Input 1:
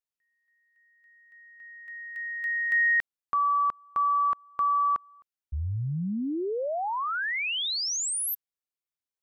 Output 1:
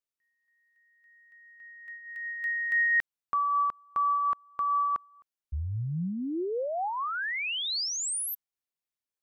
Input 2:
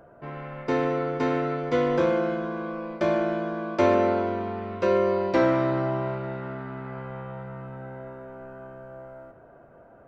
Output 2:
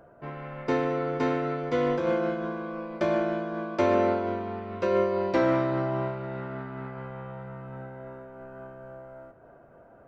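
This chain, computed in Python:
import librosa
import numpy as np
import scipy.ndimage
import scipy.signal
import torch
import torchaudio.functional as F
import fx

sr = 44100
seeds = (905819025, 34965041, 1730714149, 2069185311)

y = fx.am_noise(x, sr, seeds[0], hz=5.7, depth_pct=60)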